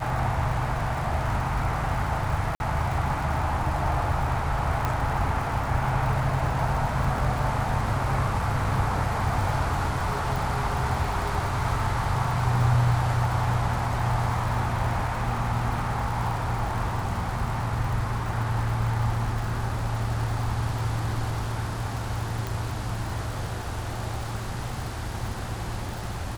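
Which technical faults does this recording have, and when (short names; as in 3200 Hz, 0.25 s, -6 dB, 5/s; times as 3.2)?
crackle 150/s -33 dBFS
2.55–2.6 gap 51 ms
4.85 pop -13 dBFS
10.36 pop
22.47 pop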